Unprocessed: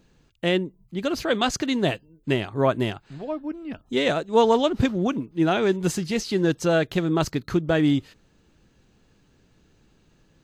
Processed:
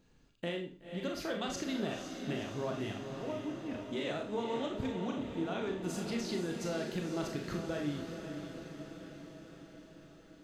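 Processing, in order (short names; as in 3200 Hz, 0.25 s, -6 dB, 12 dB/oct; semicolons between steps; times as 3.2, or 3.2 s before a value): compressor, threshold -27 dBFS, peak gain reduction 13.5 dB; on a send: diffused feedback echo 0.504 s, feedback 65%, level -7 dB; on the sum: Schroeder reverb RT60 0.38 s, combs from 27 ms, DRR 2.5 dB; gain -8.5 dB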